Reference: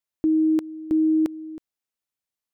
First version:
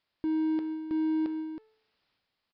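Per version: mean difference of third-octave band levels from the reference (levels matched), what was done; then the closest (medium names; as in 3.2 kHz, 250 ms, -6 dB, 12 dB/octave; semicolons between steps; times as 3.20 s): 4.5 dB: de-hum 437.5 Hz, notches 6; transient shaper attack -2 dB, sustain +8 dB; power-law waveshaper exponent 0.7; resampled via 11.025 kHz; trim -9 dB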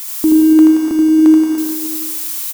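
10.5 dB: zero-crossing glitches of -28.5 dBFS; graphic EQ 125/250/500/1000 Hz -11/+5/-4/+9 dB; on a send: reverse bouncing-ball echo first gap 80 ms, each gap 1.2×, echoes 5; on the sum: gated-style reverb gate 330 ms flat, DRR 1.5 dB; trim +6.5 dB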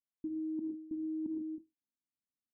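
3.5 dB: four-pole ladder low-pass 330 Hz, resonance 50%; gated-style reverb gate 170 ms flat, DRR 4 dB; reverse; compression 12:1, threshold -38 dBFS, peak gain reduction 15 dB; reverse; endings held to a fixed fall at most 300 dB/s; trim +2 dB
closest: third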